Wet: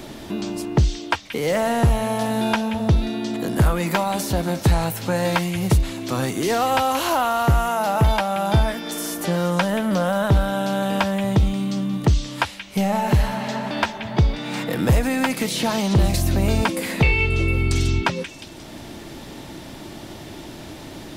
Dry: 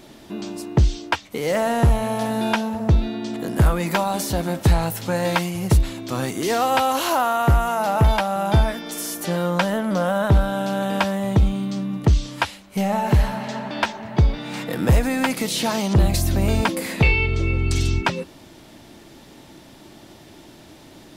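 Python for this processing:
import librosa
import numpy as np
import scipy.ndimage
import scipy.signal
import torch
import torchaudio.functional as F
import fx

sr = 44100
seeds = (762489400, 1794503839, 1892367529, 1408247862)

p1 = x + fx.echo_stepped(x, sr, ms=178, hz=2700.0, octaves=0.7, feedback_pct=70, wet_db=-9, dry=0)
y = fx.band_squash(p1, sr, depth_pct=40)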